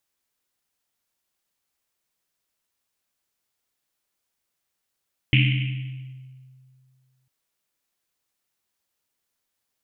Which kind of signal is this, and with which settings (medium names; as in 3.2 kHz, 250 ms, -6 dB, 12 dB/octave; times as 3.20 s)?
Risset drum length 1.95 s, pitch 130 Hz, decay 2.24 s, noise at 2.6 kHz, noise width 960 Hz, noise 30%